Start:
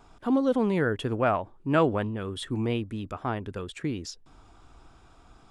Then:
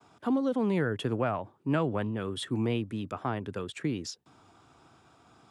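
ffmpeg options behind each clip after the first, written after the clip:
-filter_complex "[0:a]highpass=f=100:w=0.5412,highpass=f=100:w=1.3066,agate=range=-33dB:threshold=-56dB:ratio=3:detection=peak,acrossover=split=180[a][b];[b]acompressor=threshold=-26dB:ratio=6[c];[a][c]amix=inputs=2:normalize=0"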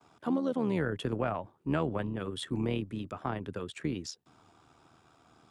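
-af "tremolo=f=79:d=0.571"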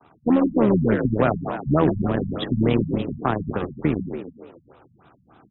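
-filter_complex "[0:a]asplit=2[a][b];[b]acrusher=bits=4:mix=0:aa=0.5,volume=-5dB[c];[a][c]amix=inputs=2:normalize=0,asplit=7[d][e][f][g][h][i][j];[e]adelay=142,afreqshift=38,volume=-6dB[k];[f]adelay=284,afreqshift=76,volume=-11.8dB[l];[g]adelay=426,afreqshift=114,volume=-17.7dB[m];[h]adelay=568,afreqshift=152,volume=-23.5dB[n];[i]adelay=710,afreqshift=190,volume=-29.4dB[o];[j]adelay=852,afreqshift=228,volume=-35.2dB[p];[d][k][l][m][n][o][p]amix=inputs=7:normalize=0,afftfilt=real='re*lt(b*sr/1024,210*pow(4000/210,0.5+0.5*sin(2*PI*3.4*pts/sr)))':imag='im*lt(b*sr/1024,210*pow(4000/210,0.5+0.5*sin(2*PI*3.4*pts/sr)))':win_size=1024:overlap=0.75,volume=8dB"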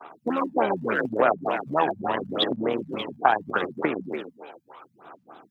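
-af "aphaser=in_gain=1:out_gain=1:delay=1.3:decay=0.6:speed=0.77:type=sinusoidal,acompressor=threshold=-19dB:ratio=6,highpass=540,volume=7dB"

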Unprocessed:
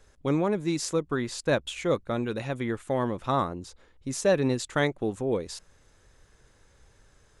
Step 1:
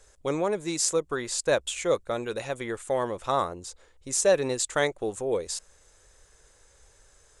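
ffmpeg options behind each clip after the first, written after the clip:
-af "equalizer=f=125:t=o:w=1:g=-7,equalizer=f=250:t=o:w=1:g=-8,equalizer=f=500:t=o:w=1:g=4,equalizer=f=8k:t=o:w=1:g=11"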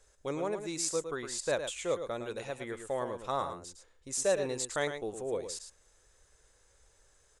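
-af "aecho=1:1:110:0.376,volume=-7.5dB"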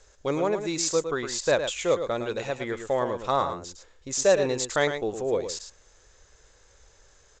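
-af "volume=8.5dB" -ar 16000 -c:a g722

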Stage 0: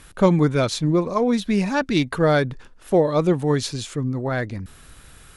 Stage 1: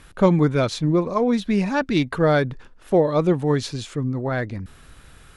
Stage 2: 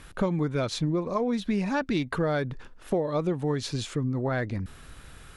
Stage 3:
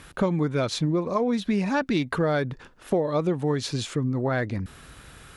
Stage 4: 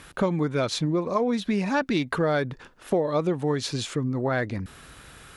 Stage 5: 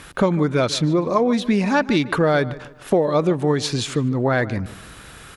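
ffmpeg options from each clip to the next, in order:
-af "highshelf=f=5.9k:g=-8.5"
-af "acompressor=threshold=-24dB:ratio=5"
-af "highpass=f=70:p=1,volume=3dB"
-af "lowshelf=f=220:g=-4,volume=1dB"
-filter_complex "[0:a]asplit=2[a][b];[b]adelay=149,lowpass=f=2.9k:p=1,volume=-17dB,asplit=2[c][d];[d]adelay=149,lowpass=f=2.9k:p=1,volume=0.38,asplit=2[e][f];[f]adelay=149,lowpass=f=2.9k:p=1,volume=0.38[g];[a][c][e][g]amix=inputs=4:normalize=0,volume=6dB"

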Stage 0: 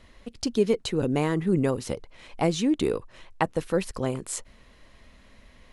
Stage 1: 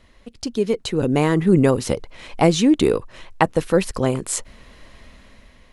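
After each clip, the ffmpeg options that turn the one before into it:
-af "dynaudnorm=f=300:g=7:m=11.5dB"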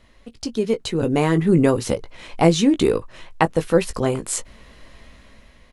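-filter_complex "[0:a]asplit=2[a][b];[b]adelay=18,volume=-9dB[c];[a][c]amix=inputs=2:normalize=0,volume=-1dB"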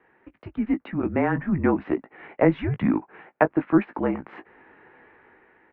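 -af "highpass=f=400:t=q:w=0.5412,highpass=f=400:t=q:w=1.307,lowpass=f=2.3k:t=q:w=0.5176,lowpass=f=2.3k:t=q:w=0.7071,lowpass=f=2.3k:t=q:w=1.932,afreqshift=-180"

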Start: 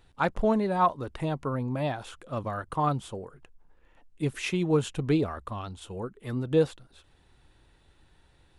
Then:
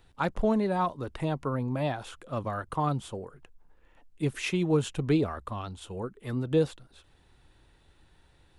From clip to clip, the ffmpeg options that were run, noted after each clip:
-filter_complex "[0:a]acrossover=split=400|3000[a][b][c];[b]acompressor=threshold=-26dB:ratio=6[d];[a][d][c]amix=inputs=3:normalize=0"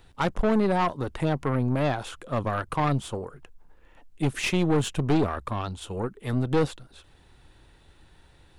-af "aeval=exprs='(tanh(20*val(0)+0.55)-tanh(0.55))/20':c=same,volume=8dB"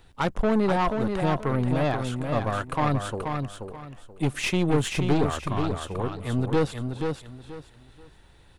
-af "aecho=1:1:481|962|1443:0.531|0.133|0.0332"

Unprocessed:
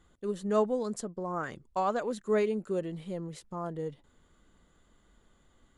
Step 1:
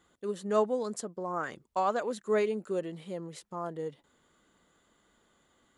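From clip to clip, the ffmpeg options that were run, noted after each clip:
-af "highpass=f=300:p=1,volume=1.5dB"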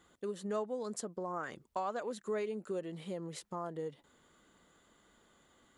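-af "acompressor=threshold=-40dB:ratio=2.5,volume=1.5dB"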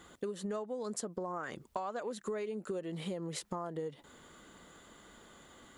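-af "acompressor=threshold=-46dB:ratio=6,volume=10dB"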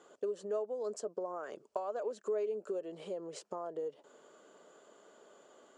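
-af "highpass=320,equalizer=f=420:t=q:w=4:g=9,equalizer=f=610:t=q:w=4:g=10,equalizer=f=2k:t=q:w=4:g=-9,equalizer=f=3.7k:t=q:w=4:g=-8,lowpass=f=7.8k:w=0.5412,lowpass=f=7.8k:w=1.3066,volume=-4.5dB"

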